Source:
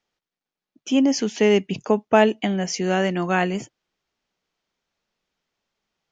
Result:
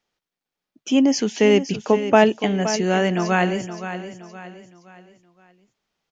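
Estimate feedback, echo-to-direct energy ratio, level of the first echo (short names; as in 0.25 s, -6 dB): 39%, -10.5 dB, -11.0 dB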